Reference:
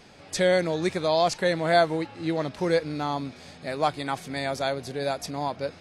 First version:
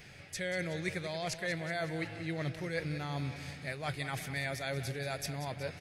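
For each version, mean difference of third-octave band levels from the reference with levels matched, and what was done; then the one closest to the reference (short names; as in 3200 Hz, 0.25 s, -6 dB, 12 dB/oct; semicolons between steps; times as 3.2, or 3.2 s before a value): 7.0 dB: high shelf 6400 Hz +8.5 dB; reverse; compressor 6:1, threshold -29 dBFS, peak gain reduction 13.5 dB; reverse; graphic EQ 125/250/500/1000/2000/4000/8000 Hz +7/-9/-3/-11/+7/-5/-6 dB; feedback echo 0.185 s, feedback 57%, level -12 dB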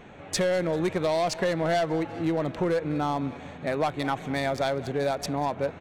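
4.0 dB: Wiener smoothing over 9 samples; soft clip -19 dBFS, distortion -13 dB; feedback echo 0.197 s, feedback 50%, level -20.5 dB; compressor, threshold -28 dBFS, peak gain reduction 7 dB; gain +5.5 dB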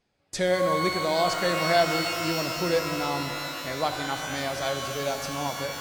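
9.0 dB: gate with hold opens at -33 dBFS; low shelf 65 Hz +7 dB; shimmer reverb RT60 3.3 s, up +12 st, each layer -2 dB, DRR 6 dB; gain -3 dB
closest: second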